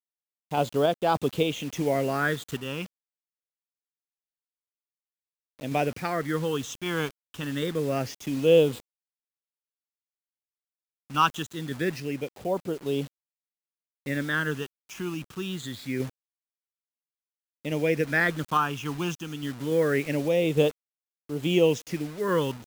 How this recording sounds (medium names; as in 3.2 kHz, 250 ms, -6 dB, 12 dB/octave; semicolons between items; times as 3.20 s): phasing stages 8, 0.25 Hz, lowest notch 560–1900 Hz; a quantiser's noise floor 8-bit, dither none; random-step tremolo